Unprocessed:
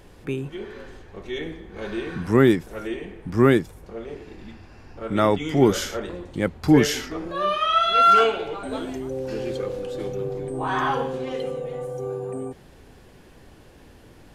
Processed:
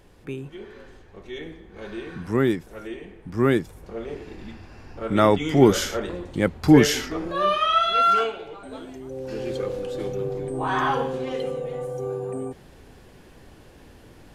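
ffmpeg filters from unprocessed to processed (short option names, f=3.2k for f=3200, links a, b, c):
-af "volume=10.5dB,afade=t=in:st=3.37:d=0.65:silence=0.446684,afade=t=out:st=7.48:d=0.86:silence=0.316228,afade=t=in:st=8.97:d=0.65:silence=0.375837"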